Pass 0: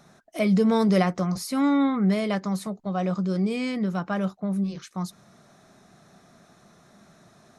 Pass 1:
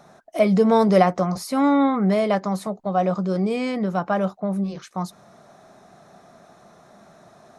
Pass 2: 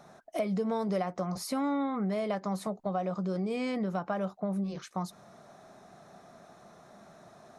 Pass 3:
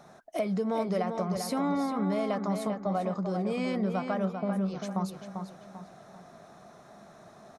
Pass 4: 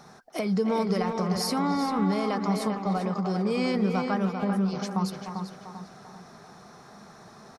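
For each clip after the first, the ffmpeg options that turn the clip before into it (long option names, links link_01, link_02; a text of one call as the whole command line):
ffmpeg -i in.wav -af "equalizer=frequency=710:width_type=o:width=1.7:gain=9.5" out.wav
ffmpeg -i in.wav -af "acompressor=threshold=-25dB:ratio=5,volume=-4dB" out.wav
ffmpeg -i in.wav -filter_complex "[0:a]asplit=2[link_01][link_02];[link_02]adelay=394,lowpass=frequency=4000:poles=1,volume=-6dB,asplit=2[link_03][link_04];[link_04]adelay=394,lowpass=frequency=4000:poles=1,volume=0.4,asplit=2[link_05][link_06];[link_06]adelay=394,lowpass=frequency=4000:poles=1,volume=0.4,asplit=2[link_07][link_08];[link_08]adelay=394,lowpass=frequency=4000:poles=1,volume=0.4,asplit=2[link_09][link_10];[link_10]adelay=394,lowpass=frequency=4000:poles=1,volume=0.4[link_11];[link_01][link_03][link_05][link_07][link_09][link_11]amix=inputs=6:normalize=0,volume=1dB" out.wav
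ffmpeg -i in.wav -filter_complex "[0:a]superequalizer=6b=0.708:8b=0.398:14b=2,asplit=2[link_01][link_02];[link_02]adelay=300,highpass=300,lowpass=3400,asoftclip=type=hard:threshold=-28.5dB,volume=-7dB[link_03];[link_01][link_03]amix=inputs=2:normalize=0,volume=4.5dB" out.wav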